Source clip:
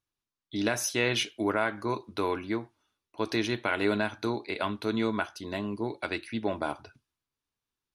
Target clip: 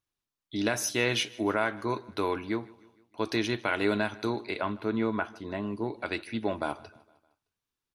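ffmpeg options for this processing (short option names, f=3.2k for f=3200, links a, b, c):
-filter_complex "[0:a]asettb=1/sr,asplit=3[a][b][c];[a]atrim=end=4.604[d];[b]atrim=start=4.6:end=6.06,asetpts=PTS-STARTPTS,afade=t=in:d=0.004:c=qsin,afade=t=out:st=1.456:d=0.004:c=qsin,acrossover=split=2500[e][f];[f]acompressor=threshold=-57dB:ratio=4:attack=1:release=60[g];[e][g]amix=inputs=2:normalize=0[h];[c]atrim=start=6.056[i];[d][h]acrossfade=d=0.004:c1=hsin:c2=qsin[j];[j][i]acrossfade=d=0.004:c1=qsin:c2=hsin,aecho=1:1:154|308|462|616:0.075|0.039|0.0203|0.0105"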